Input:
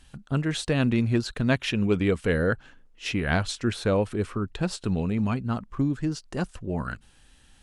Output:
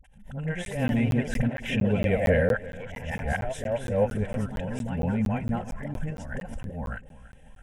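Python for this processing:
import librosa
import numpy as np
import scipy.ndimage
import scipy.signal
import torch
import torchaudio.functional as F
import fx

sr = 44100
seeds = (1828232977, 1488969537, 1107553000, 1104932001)

y = x + 0.43 * np.pad(x, (int(3.8 * sr / 1000.0), 0))[:len(x)]
y = fx.auto_swell(y, sr, attack_ms=156.0)
y = fx.high_shelf(y, sr, hz=2100.0, db=-11.0)
y = fx.echo_feedback(y, sr, ms=333, feedback_pct=50, wet_db=-18)
y = fx.echo_pitch(y, sr, ms=152, semitones=2, count=3, db_per_echo=-6.0)
y = fx.fixed_phaser(y, sr, hz=1200.0, stages=6)
y = fx.dispersion(y, sr, late='highs', ms=45.0, hz=530.0)
y = fx.buffer_crackle(y, sr, first_s=0.65, period_s=0.23, block=512, kind='zero')
y = fx.pre_swell(y, sr, db_per_s=94.0)
y = y * librosa.db_to_amplitude(4.5)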